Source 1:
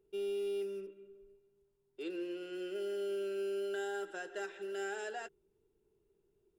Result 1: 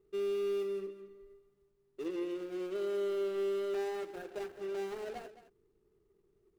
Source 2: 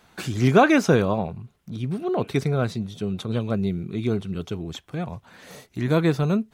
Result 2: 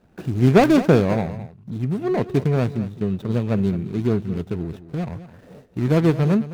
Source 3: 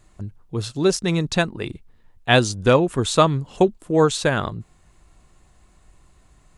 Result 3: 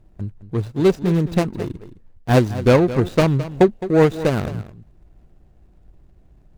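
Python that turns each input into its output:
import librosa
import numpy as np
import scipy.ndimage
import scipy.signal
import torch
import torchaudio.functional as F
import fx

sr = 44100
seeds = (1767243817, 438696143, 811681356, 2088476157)

y = scipy.ndimage.median_filter(x, 41, mode='constant')
y = y + 10.0 ** (-14.5 / 20.0) * np.pad(y, (int(214 * sr / 1000.0), 0))[:len(y)]
y = y * 10.0 ** (4.0 / 20.0)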